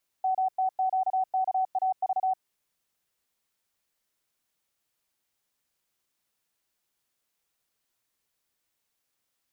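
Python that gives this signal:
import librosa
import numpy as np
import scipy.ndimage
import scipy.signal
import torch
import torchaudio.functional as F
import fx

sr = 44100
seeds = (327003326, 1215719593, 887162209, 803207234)

y = fx.morse(sr, text='MTQKAV', wpm=35, hz=754.0, level_db=-22.5)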